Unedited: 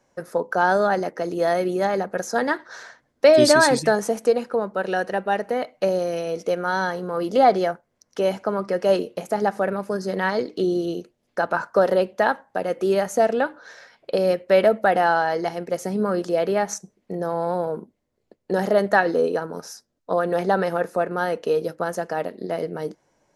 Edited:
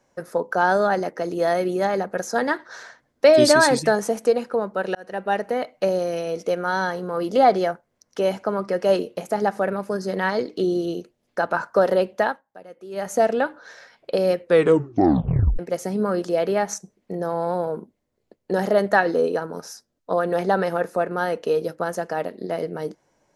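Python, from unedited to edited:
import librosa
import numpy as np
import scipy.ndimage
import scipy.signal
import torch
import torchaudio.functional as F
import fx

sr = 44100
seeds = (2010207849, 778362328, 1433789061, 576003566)

y = fx.edit(x, sr, fx.fade_in_span(start_s=4.95, length_s=0.35),
    fx.fade_down_up(start_s=12.2, length_s=0.92, db=-17.5, fade_s=0.21),
    fx.tape_stop(start_s=14.41, length_s=1.18), tone=tone)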